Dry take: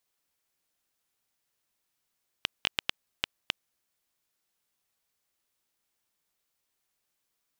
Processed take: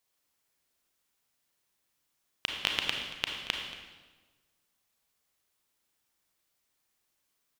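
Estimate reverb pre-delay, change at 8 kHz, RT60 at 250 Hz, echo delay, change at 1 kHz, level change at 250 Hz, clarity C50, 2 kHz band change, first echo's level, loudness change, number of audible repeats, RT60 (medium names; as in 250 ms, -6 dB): 30 ms, +2.0 dB, 1.4 s, 230 ms, +2.5 dB, +3.0 dB, 3.0 dB, +2.5 dB, -17.0 dB, +2.0 dB, 1, 1.3 s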